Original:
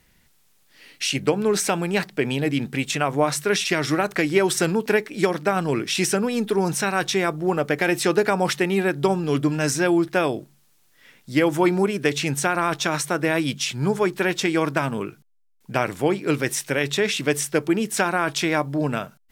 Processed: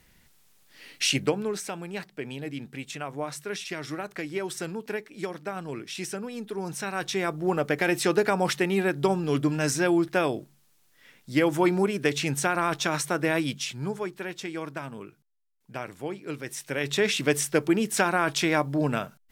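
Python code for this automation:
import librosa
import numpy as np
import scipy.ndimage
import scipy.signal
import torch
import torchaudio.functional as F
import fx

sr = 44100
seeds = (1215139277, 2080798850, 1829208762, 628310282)

y = fx.gain(x, sr, db=fx.line((1.11, 0.0), (1.62, -12.5), (6.5, -12.5), (7.47, -3.5), (13.37, -3.5), (14.2, -13.0), (16.44, -13.0), (17.02, -2.0)))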